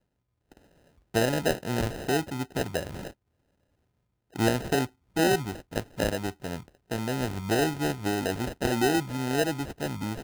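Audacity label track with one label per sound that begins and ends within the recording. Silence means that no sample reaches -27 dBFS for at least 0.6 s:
1.150000	2.870000	sound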